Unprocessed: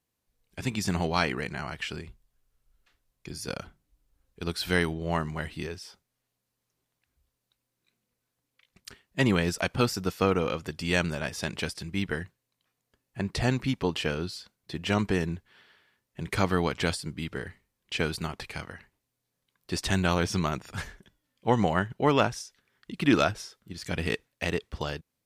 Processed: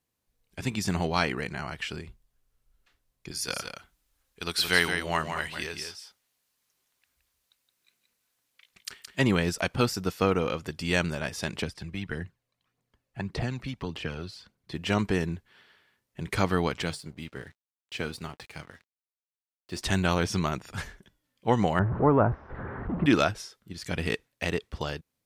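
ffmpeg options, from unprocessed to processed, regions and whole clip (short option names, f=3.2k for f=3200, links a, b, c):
-filter_complex "[0:a]asettb=1/sr,asplit=3[a][b][c];[a]atrim=end=3.314[d];[b]atrim=start=3.31:end=9.19,asetpts=PTS-STARTPTS,afade=t=in:d=0.004:c=qsin,afade=t=out:st=5.876:d=0.004:c=qsin,tiltshelf=f=690:g=-7,aecho=1:1:170:0.447,atrim=end_sample=259308[e];[c]atrim=start=9.186[f];[d][e]acrossfade=d=0.004:c1=hsin:c2=qsin[g];[g][f]acrossfade=d=0.004:c1=qsin:c2=hsin,asettb=1/sr,asplit=3[h][i][j];[h]atrim=end=11.624[k];[i]atrim=start=11.62:end=14.72,asetpts=PTS-STARTPTS,afade=t=in:d=0.004:c=qsin,afade=t=out:st=3.096:d=0.004:c=qsin,aemphasis=mode=reproduction:type=cd,acrossover=split=110|3400[l][m][n];[l]acompressor=threshold=-45dB:ratio=4[o];[m]acompressor=threshold=-32dB:ratio=4[p];[n]acompressor=threshold=-47dB:ratio=4[q];[o][p][q]amix=inputs=3:normalize=0,aphaser=in_gain=1:out_gain=1:delay=1.9:decay=0.45:speed=1.7:type=triangular[r];[j]atrim=start=14.716[s];[k][r]acrossfade=d=0.004:c1=hsin:c2=qsin[t];[t][s]acrossfade=d=0.004:c1=qsin:c2=hsin,asettb=1/sr,asplit=3[u][v][w];[u]atrim=end=16.824[x];[v]atrim=start=16.82:end=19.81,asetpts=PTS-STARTPTS,afade=t=in:d=0.004:c=qsin,afade=t=out:st=2.986:d=0.004:c=qsin,highpass=f=44:w=0.5412,highpass=f=44:w=1.3066,flanger=delay=5.7:depth=3.1:regen=73:speed=1.2:shape=triangular,aeval=exprs='sgn(val(0))*max(abs(val(0))-0.00168,0)':c=same[y];[w]atrim=start=19.806[z];[x][y]acrossfade=d=0.004:c1=hsin:c2=qsin[aa];[aa][z]acrossfade=d=0.004:c1=qsin:c2=hsin,asettb=1/sr,asplit=3[ab][ac][ad];[ab]atrim=end=21.794[ae];[ac]atrim=start=21.79:end=23.06,asetpts=PTS-STARTPTS,afade=t=in:d=0.004:c=qsin,afade=t=out:st=1.266:d=0.004:c=qsin,aeval=exprs='val(0)+0.5*0.0447*sgn(val(0))':c=same,lowpass=f=1.3k:w=0.5412,lowpass=f=1.3k:w=1.3066,equalizer=f=76:w=1.7:g=9[af];[ad]atrim=start=23.056[ag];[ae][af]acrossfade=d=0.004:c1=hsin:c2=qsin[ah];[ah][ag]acrossfade=d=0.004:c1=qsin:c2=hsin"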